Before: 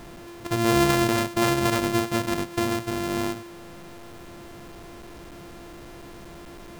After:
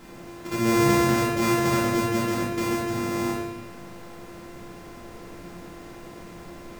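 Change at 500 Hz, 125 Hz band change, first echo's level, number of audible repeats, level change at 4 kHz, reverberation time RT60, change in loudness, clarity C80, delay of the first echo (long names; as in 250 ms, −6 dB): 0.0 dB, +0.5 dB, no echo audible, no echo audible, −3.0 dB, 1.2 s, 0.0 dB, 4.0 dB, no echo audible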